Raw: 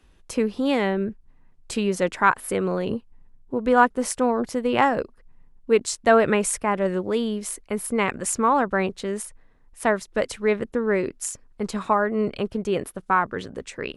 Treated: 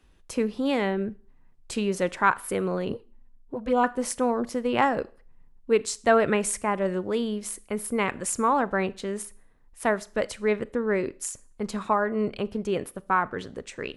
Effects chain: Schroeder reverb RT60 0.42 s, combs from 26 ms, DRR 19 dB; 2.92–3.84 s: touch-sensitive flanger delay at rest 4.6 ms, full sweep at -14.5 dBFS; trim -3 dB

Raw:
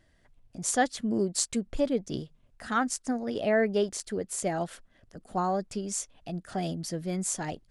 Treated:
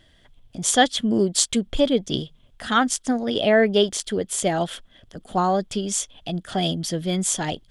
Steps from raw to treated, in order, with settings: peaking EQ 3.3 kHz +14.5 dB 0.32 oct; trim +7.5 dB

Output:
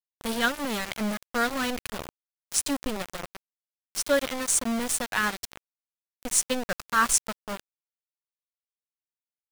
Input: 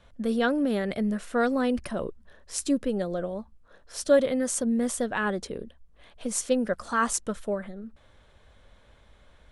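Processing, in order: peaking EQ 400 Hz -13.5 dB 2.2 oct; small samples zeroed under -33.5 dBFS; trim +7 dB

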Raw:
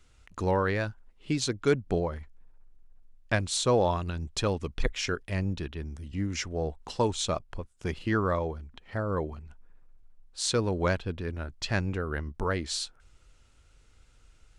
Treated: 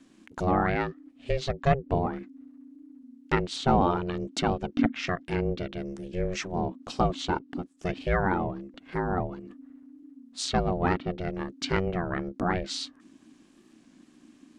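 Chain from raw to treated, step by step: ring modulator 270 Hz; low-pass that closes with the level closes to 2.9 kHz, closed at -28 dBFS; warped record 33 1/3 rpm, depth 100 cents; trim +4.5 dB

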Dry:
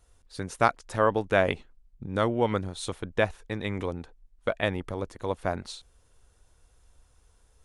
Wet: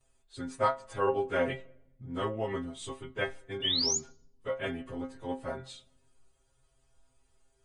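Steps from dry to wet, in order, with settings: frequency-domain pitch shifter -1.5 st; band-stop 5.5 kHz, Q 8.6; painted sound rise, 3.62–3.98 s, 2.8–7.2 kHz -26 dBFS; inharmonic resonator 130 Hz, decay 0.23 s, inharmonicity 0.002; on a send: reverberation RT60 0.95 s, pre-delay 3 ms, DRR 22 dB; on the sum: trim +6.5 dB

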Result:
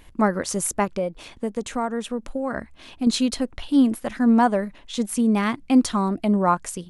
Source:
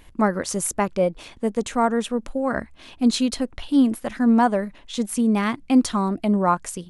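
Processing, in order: 0.84–3.07 s: compression 2.5:1, threshold -24 dBFS, peak gain reduction 7 dB

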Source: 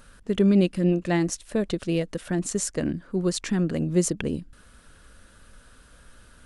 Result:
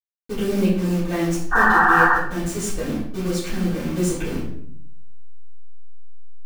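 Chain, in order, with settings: send-on-delta sampling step -29 dBFS; painted sound noise, 1.51–2.13 s, 700–1900 Hz -17 dBFS; simulated room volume 110 m³, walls mixed, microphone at 3.6 m; trim -11.5 dB

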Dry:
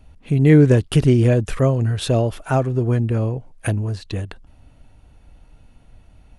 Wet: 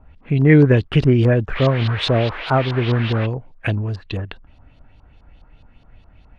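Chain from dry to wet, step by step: 1.54–3.25 s: band noise 350–3800 Hz -34 dBFS; LFO low-pass saw up 4.8 Hz 1–4.7 kHz

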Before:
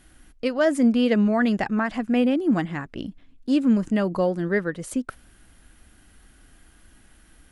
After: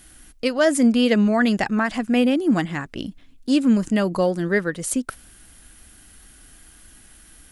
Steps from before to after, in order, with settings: treble shelf 3.7 kHz +11 dB; trim +2 dB

